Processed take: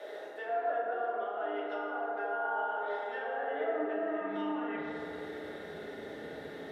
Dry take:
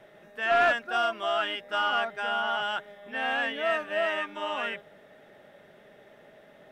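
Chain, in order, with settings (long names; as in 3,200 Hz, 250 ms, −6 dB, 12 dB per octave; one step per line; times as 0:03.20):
treble cut that deepens with the level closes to 990 Hz, closed at −26.5 dBFS
thirty-one-band graphic EQ 125 Hz −12 dB, 400 Hz +5 dB, 630 Hz −4 dB, 1,000 Hz −5 dB, 2,500 Hz −5 dB, 4,000 Hz +8 dB
reversed playback
downward compressor, threshold −42 dBFS, peak gain reduction 16.5 dB
reversed playback
brickwall limiter −41.5 dBFS, peak gain reduction 9 dB
high-pass filter sweep 530 Hz → 78 Hz, 0:03.53–0:04.84
feedback delay network reverb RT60 2.8 s, high-frequency decay 0.35×, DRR −5.5 dB
level +4 dB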